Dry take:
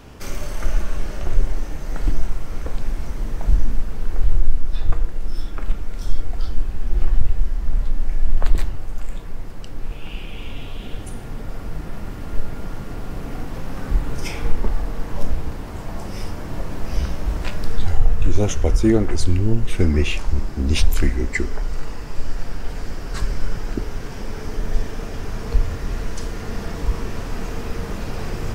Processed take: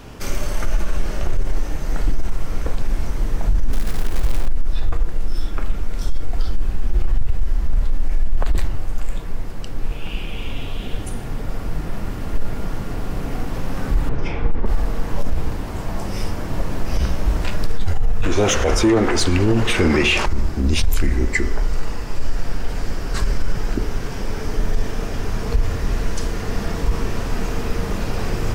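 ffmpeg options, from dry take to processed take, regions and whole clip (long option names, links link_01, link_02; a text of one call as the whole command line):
ffmpeg -i in.wav -filter_complex "[0:a]asettb=1/sr,asplit=3[link_01][link_02][link_03];[link_01]atrim=end=3.734[link_04];[link_02]atrim=start=3.73:end=4.48,asetpts=PTS-STARTPTS,afade=type=in:duration=0.004:curve=qsin,afade=type=out:start_time=0.746:duration=0.004:curve=qsin,acrusher=bits=5:mode=log:mix=0:aa=0.000001,acompressor=mode=upward:threshold=-16dB:ratio=2.5:attack=3.2:release=140:knee=2.83:detection=peak[link_05];[link_03]atrim=start=4.476[link_06];[link_04][link_05]acrossfade=duration=0.004:curve1=hsin:curve2=qsin[link_07];[link_07][link_06]acrossfade=duration=0.004:curve1=qsin:curve2=hsin,asettb=1/sr,asplit=3[link_08][link_09][link_10];[link_08]atrim=end=14.094[link_11];[link_09]atrim=start=14.09:end=14.66,asetpts=PTS-STARTPTS,afade=type=in:duration=0.004:curve=qsin,afade=type=out:start_time=0.566:duration=0.004:curve=qsin,lowpass=4000,highshelf=frequency=2900:gain=-11[link_12];[link_10]atrim=start=14.656[link_13];[link_11][link_12]acrossfade=duration=0.004:curve1=hsin:curve2=qsin[link_14];[link_14][link_13]acrossfade=duration=0.004:curve1=qsin:curve2=hsin,asettb=1/sr,asplit=3[link_15][link_16][link_17];[link_15]atrim=end=18.234[link_18];[link_16]atrim=start=18.23:end=20.26,asetpts=PTS-STARTPTS,afade=type=in:duration=0.004:curve=qsin,afade=type=out:start_time=2.026:duration=0.004:curve=qsin,asplit=2[link_19][link_20];[link_20]highpass=frequency=720:poles=1,volume=20dB,asoftclip=type=tanh:threshold=-2.5dB[link_21];[link_19][link_21]amix=inputs=2:normalize=0,lowpass=frequency=3200:poles=1,volume=-6dB,aecho=1:1:106|212|318|424:0.0794|0.0413|0.0215|0.0112,atrim=end_sample=89523[link_22];[link_17]atrim=start=20.256[link_23];[link_18][link_22]acrossfade=duration=0.004:curve1=hsin:curve2=qsin[link_24];[link_24][link_23]acrossfade=duration=0.004:curve1=qsin:curve2=hsin,bandreject=frequency=73.67:width_type=h:width=4,bandreject=frequency=147.34:width_type=h:width=4,bandreject=frequency=221.01:width_type=h:width=4,bandreject=frequency=294.68:width_type=h:width=4,bandreject=frequency=368.35:width_type=h:width=4,bandreject=frequency=442.02:width_type=h:width=4,bandreject=frequency=515.69:width_type=h:width=4,bandreject=frequency=589.36:width_type=h:width=4,bandreject=frequency=663.03:width_type=h:width=4,bandreject=frequency=736.7:width_type=h:width=4,bandreject=frequency=810.37:width_type=h:width=4,bandreject=frequency=884.04:width_type=h:width=4,bandreject=frequency=957.71:width_type=h:width=4,bandreject=frequency=1031.38:width_type=h:width=4,bandreject=frequency=1105.05:width_type=h:width=4,bandreject=frequency=1178.72:width_type=h:width=4,bandreject=frequency=1252.39:width_type=h:width=4,bandreject=frequency=1326.06:width_type=h:width=4,bandreject=frequency=1399.73:width_type=h:width=4,bandreject=frequency=1473.4:width_type=h:width=4,bandreject=frequency=1547.07:width_type=h:width=4,bandreject=frequency=1620.74:width_type=h:width=4,bandreject=frequency=1694.41:width_type=h:width=4,bandreject=frequency=1768.08:width_type=h:width=4,bandreject=frequency=1841.75:width_type=h:width=4,bandreject=frequency=1915.42:width_type=h:width=4,bandreject=frequency=1989.09:width_type=h:width=4,bandreject=frequency=2062.76:width_type=h:width=4,bandreject=frequency=2136.43:width_type=h:width=4,bandreject=frequency=2210.1:width_type=h:width=4,bandreject=frequency=2283.77:width_type=h:width=4,alimiter=limit=-13dB:level=0:latency=1:release=33,volume=4.5dB" out.wav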